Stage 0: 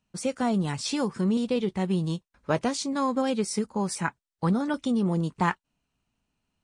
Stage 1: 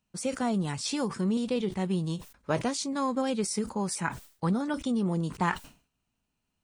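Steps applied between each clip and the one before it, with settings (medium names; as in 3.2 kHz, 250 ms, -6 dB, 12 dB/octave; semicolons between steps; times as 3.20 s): treble shelf 9 kHz +7 dB; decay stretcher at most 140 dB/s; trim -3 dB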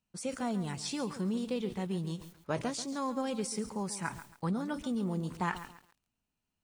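bit-crushed delay 138 ms, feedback 35%, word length 8-bit, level -13 dB; trim -5.5 dB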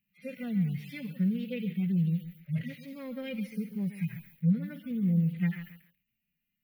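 harmonic-percussive separation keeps harmonic; FFT filter 100 Hz 0 dB, 170 Hz +11 dB, 330 Hz -12 dB, 510 Hz -2 dB, 960 Hz -24 dB, 2.1 kHz +14 dB, 8.1 kHz -23 dB, 12 kHz +14 dB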